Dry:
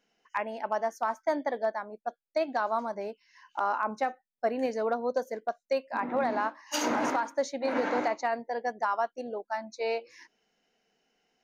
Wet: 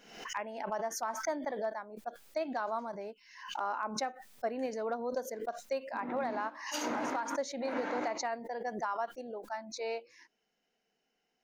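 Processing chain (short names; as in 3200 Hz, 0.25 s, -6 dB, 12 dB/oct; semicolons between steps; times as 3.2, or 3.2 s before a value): backwards sustainer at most 76 dB/s; gain -6.5 dB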